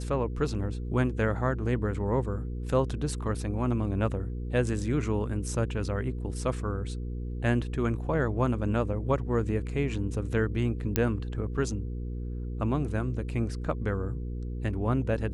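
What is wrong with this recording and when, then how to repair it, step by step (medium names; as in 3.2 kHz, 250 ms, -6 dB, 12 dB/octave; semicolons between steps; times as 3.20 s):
hum 60 Hz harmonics 8 -34 dBFS
10.96 s: pop -9 dBFS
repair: de-click; de-hum 60 Hz, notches 8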